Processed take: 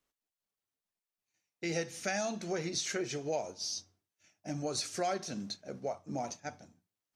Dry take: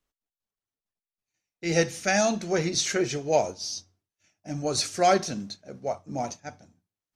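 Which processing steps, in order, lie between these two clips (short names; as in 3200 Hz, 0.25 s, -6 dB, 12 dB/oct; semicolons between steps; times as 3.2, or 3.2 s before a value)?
low shelf 73 Hz -12 dB; compressor 3:1, threshold -35 dBFS, peak gain reduction 14 dB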